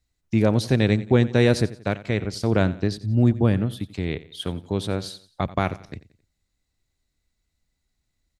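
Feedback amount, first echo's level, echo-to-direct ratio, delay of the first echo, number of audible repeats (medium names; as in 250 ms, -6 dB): 39%, -17.5 dB, -17.0 dB, 89 ms, 3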